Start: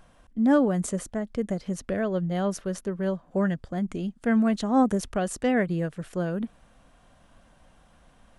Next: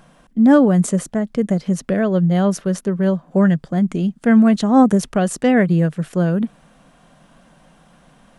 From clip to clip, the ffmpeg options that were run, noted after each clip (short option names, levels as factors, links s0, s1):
-af "lowshelf=f=120:t=q:w=3:g=-7.5,volume=2.37"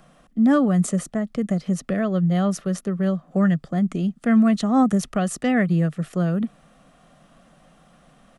-filter_complex "[0:a]acrossover=split=330|790|1500[s0][s1][s2][s3];[s1]acompressor=threshold=0.0316:ratio=6[s4];[s2]aecho=1:1:1.6:0.97[s5];[s0][s4][s5][s3]amix=inputs=4:normalize=0,volume=0.668"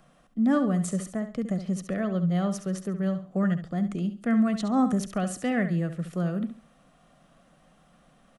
-af "aecho=1:1:69|138|207:0.299|0.0776|0.0202,volume=0.501"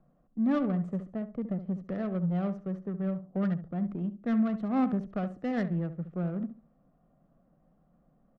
-af "adynamicsmooth=sensitivity=1.5:basefreq=690,volume=0.631"